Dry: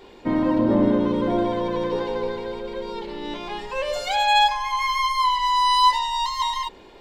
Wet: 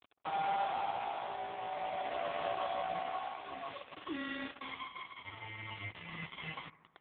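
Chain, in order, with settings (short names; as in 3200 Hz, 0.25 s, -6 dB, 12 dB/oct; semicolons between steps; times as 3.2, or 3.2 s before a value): bell 230 Hz -10 dB 0.29 oct; de-hum 279.7 Hz, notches 8; compressor 8:1, threshold -33 dBFS, peak gain reduction 19.5 dB; ring modulator 1100 Hz; fixed phaser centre 330 Hz, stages 8; overdrive pedal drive 17 dB, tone 1500 Hz, clips at -29.5 dBFS; companded quantiser 2-bit; tremolo triangle 0.5 Hz, depth 60%; analogue delay 77 ms, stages 1024, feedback 71%, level -19 dB; gain -2.5 dB; AMR-NB 4.75 kbps 8000 Hz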